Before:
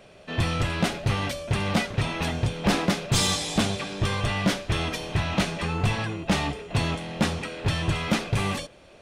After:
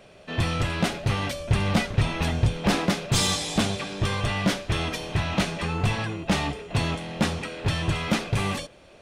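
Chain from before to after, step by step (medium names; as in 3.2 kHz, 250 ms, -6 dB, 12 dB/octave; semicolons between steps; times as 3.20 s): 1.39–2.58 s: bass shelf 82 Hz +10.5 dB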